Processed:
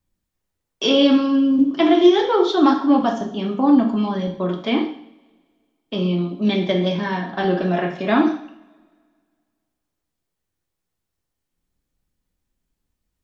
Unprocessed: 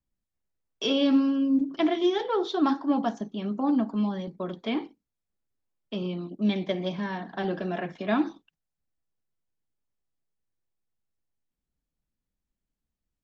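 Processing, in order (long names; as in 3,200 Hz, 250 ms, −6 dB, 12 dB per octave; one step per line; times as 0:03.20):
coupled-rooms reverb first 0.59 s, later 2 s, from −24 dB, DRR 2.5 dB
level +7.5 dB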